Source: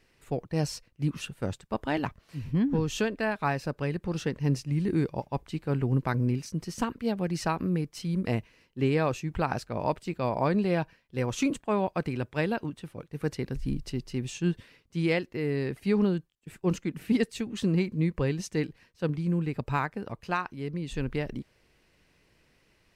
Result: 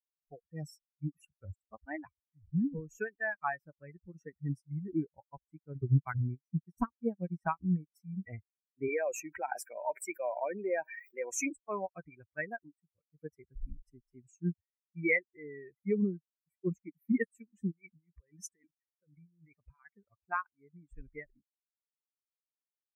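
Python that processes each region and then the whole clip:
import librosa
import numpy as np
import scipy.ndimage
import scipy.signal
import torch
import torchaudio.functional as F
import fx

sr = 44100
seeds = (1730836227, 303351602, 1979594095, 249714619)

y = fx.chain(x, sr, fx.low_shelf(hz=160.0, db=4.0),
    fx.transient(attack_db=4, sustain_db=-10), at=(5.75, 7.95))
y = fx.chain(y, sr, fx.highpass(hz=320.0, slope=12),
    fx.peak_eq(hz=1200.0, db=-10.0, octaves=0.24),
    fx.env_flatten(amount_pct=70), at=(8.88, 11.53))
y = fx.chain(y, sr, fx.low_shelf(hz=420.0, db=-5.0),
    fx.over_compress(threshold_db=-36.0, ratio=-1.0), at=(17.71, 19.95))
y = fx.bin_expand(y, sr, power=3.0)
y = scipy.signal.sosfilt(scipy.signal.ellip(3, 1.0, 40, [2200.0, 6100.0], 'bandstop', fs=sr, output='sos'), y)
y = fx.peak_eq(y, sr, hz=2200.0, db=11.0, octaves=0.57)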